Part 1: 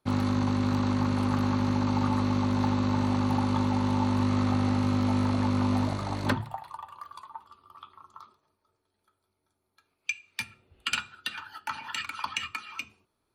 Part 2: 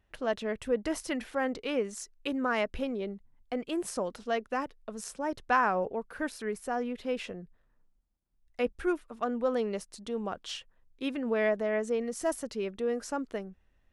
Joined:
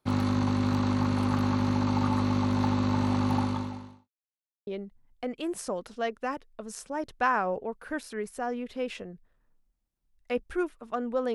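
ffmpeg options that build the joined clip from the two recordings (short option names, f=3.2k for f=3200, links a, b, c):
-filter_complex "[0:a]apad=whole_dur=11.34,atrim=end=11.34,asplit=2[a][b];[a]atrim=end=4.09,asetpts=PTS-STARTPTS,afade=t=out:st=3.4:d=0.69:c=qua[c];[b]atrim=start=4.09:end=4.67,asetpts=PTS-STARTPTS,volume=0[d];[1:a]atrim=start=2.96:end=9.63,asetpts=PTS-STARTPTS,afade=t=in:d=0.004:c=hsin[e];[c][d][e]concat=n=3:v=0:a=1"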